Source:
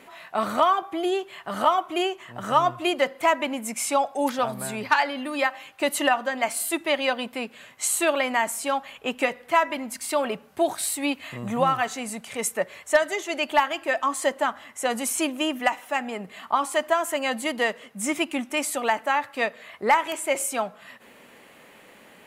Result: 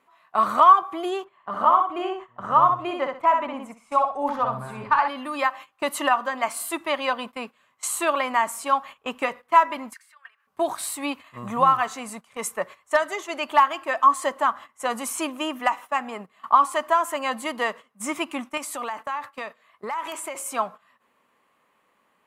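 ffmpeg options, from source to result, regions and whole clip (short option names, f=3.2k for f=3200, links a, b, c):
-filter_complex "[0:a]asettb=1/sr,asplit=3[a][b][c];[a]atrim=end=1.244[d];[b]atrim=start=1.24:end=5.08,asetpts=PTS-STARTPTS,afade=t=in:d=0.004:c=qsin,afade=t=out:st=3.836:d=0.004:c=qsin,lowpass=f=1.2k:p=1,asubboost=boost=6.5:cutoff=96,aecho=1:1:63|126|189:0.631|0.158|0.0394,atrim=end_sample=169344[e];[c]atrim=start=5.076[f];[d][e]acrossfade=d=0.004:c1=hsin:c2=qsin[g];[g][f]acrossfade=d=0.004:c1=qsin:c2=hsin,asettb=1/sr,asplit=3[h][i][j];[h]atrim=end=9.934[k];[i]atrim=start=9.93:end=10.47,asetpts=PTS-STARTPTS,afade=t=in:d=0.004:c=qsin,afade=t=out:st=0.536:d=0.004:c=qsin,acompressor=threshold=-36dB:ratio=12:attack=3.2:release=140:knee=1:detection=peak,highpass=f=1.7k:t=q:w=6.2[l];[j]atrim=start=10.466[m];[k][l]acrossfade=d=0.004:c1=hsin:c2=qsin[n];[n][m]acrossfade=d=0.004:c1=qsin:c2=hsin,asettb=1/sr,asplit=3[o][p][q];[o]atrim=end=18.574[r];[p]atrim=start=18.57:end=20.46,asetpts=PTS-STARTPTS,afade=t=in:d=0.004:c=qsin,afade=t=out:st=1.886:d=0.004:c=qsin,equalizer=f=13k:t=o:w=3:g=3,acompressor=threshold=-26dB:ratio=16:attack=3.2:release=140:knee=1:detection=peak[s];[q]atrim=start=20.456[t];[r][s]acrossfade=d=0.004:c1=hsin:c2=qsin[u];[u][t]acrossfade=d=0.004:c1=qsin:c2=hsin,equalizer=f=1.1k:t=o:w=0.52:g=13.5,agate=range=-16dB:threshold=-33dB:ratio=16:detection=peak,volume=-3.5dB"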